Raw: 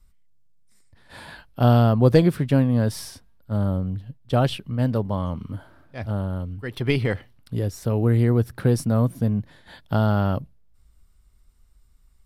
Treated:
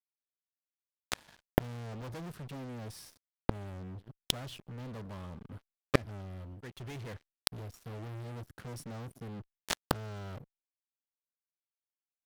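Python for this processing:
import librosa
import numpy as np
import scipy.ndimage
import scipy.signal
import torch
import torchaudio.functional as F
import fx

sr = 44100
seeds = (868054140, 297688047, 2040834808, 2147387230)

y = fx.fuzz(x, sr, gain_db=32.0, gate_db=-39.0)
y = fx.gate_flip(y, sr, shuts_db=-22.0, range_db=-41)
y = y * 10.0 ** (13.5 / 20.0)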